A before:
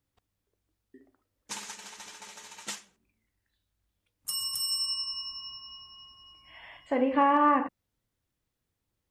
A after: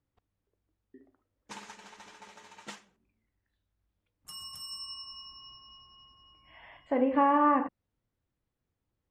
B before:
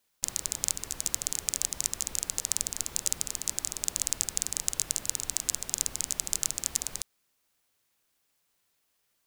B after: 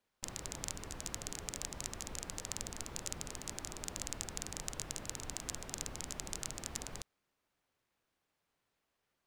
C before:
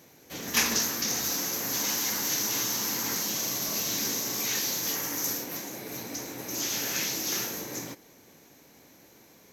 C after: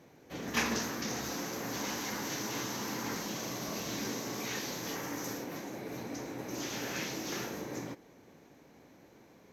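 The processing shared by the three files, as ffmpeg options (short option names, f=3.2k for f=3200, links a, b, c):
-af "lowpass=f=1.5k:p=1"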